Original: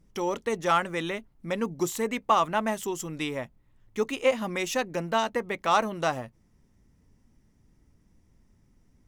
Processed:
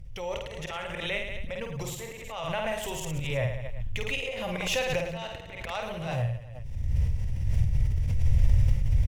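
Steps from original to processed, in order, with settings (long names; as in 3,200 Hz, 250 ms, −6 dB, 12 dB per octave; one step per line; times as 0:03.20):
camcorder AGC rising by 38 dB per second
noise gate with hold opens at −38 dBFS
drawn EQ curve 120 Hz 0 dB, 200 Hz −25 dB, 350 Hz −27 dB, 530 Hz −9 dB, 1,200 Hz −18 dB, 2,600 Hz −3 dB, 5,800 Hz −13 dB
volume swells 213 ms
low-shelf EQ 460 Hz +6.5 dB
reverse bouncing-ball delay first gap 50 ms, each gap 1.2×, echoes 5
background raised ahead of every attack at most 40 dB per second
level +4.5 dB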